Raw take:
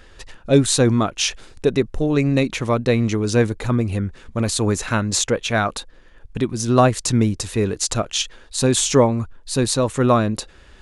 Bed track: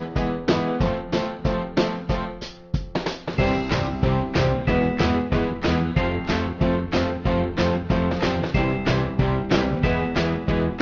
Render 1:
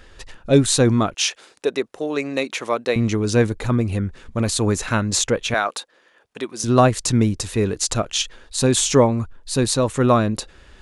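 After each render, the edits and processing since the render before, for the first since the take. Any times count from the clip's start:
0:01.14–0:02.96: high-pass filter 420 Hz
0:05.54–0:06.64: high-pass filter 450 Hz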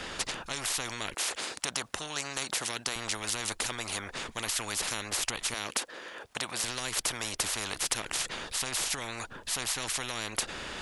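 brickwall limiter −10.5 dBFS, peak gain reduction 8.5 dB
every bin compressed towards the loudest bin 10 to 1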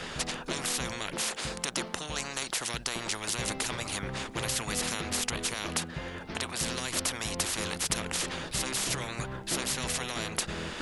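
mix in bed track −17.5 dB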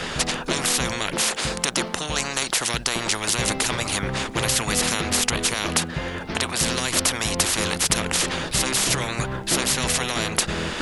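level +9.5 dB
brickwall limiter −3 dBFS, peak gain reduction 2 dB

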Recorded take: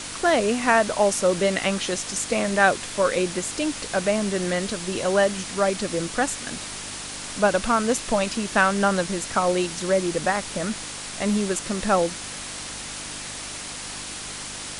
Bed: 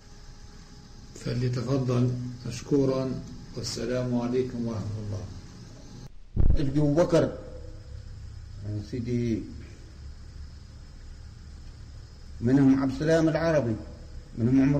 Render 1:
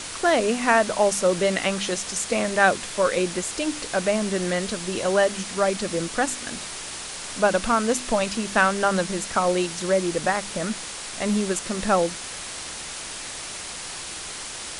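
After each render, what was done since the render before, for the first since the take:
hum removal 50 Hz, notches 6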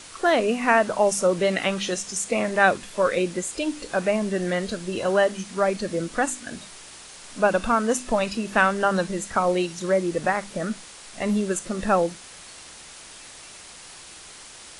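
noise reduction from a noise print 9 dB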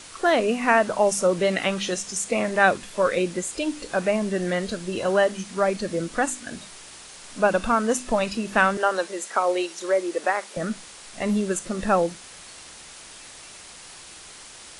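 0:08.77–0:10.57: high-pass filter 330 Hz 24 dB per octave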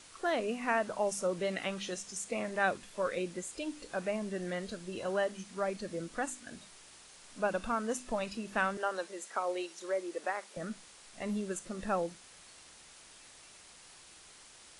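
level −12 dB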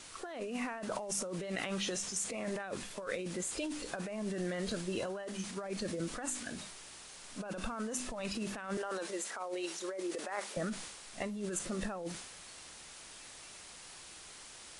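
compressor whose output falls as the input rises −39 dBFS, ratio −1
transient designer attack +1 dB, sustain +6 dB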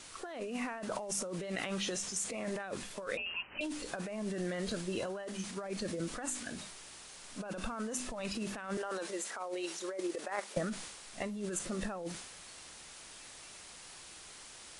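0:03.17–0:03.61: voice inversion scrambler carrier 3,000 Hz
0:09.93–0:10.62: transient designer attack +5 dB, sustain −6 dB

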